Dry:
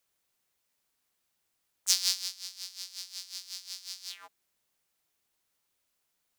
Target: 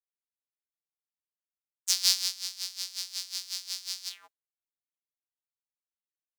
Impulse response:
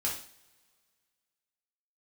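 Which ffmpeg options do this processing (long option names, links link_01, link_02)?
-filter_complex "[0:a]agate=range=-33dB:threshold=-43dB:ratio=3:detection=peak,asplit=3[link_01][link_02][link_03];[link_01]afade=type=out:start_time=2.03:duration=0.02[link_04];[link_02]acontrast=78,afade=type=in:start_time=2.03:duration=0.02,afade=type=out:start_time=4.08:duration=0.02[link_05];[link_03]afade=type=in:start_time=4.08:duration=0.02[link_06];[link_04][link_05][link_06]amix=inputs=3:normalize=0,volume=-1dB"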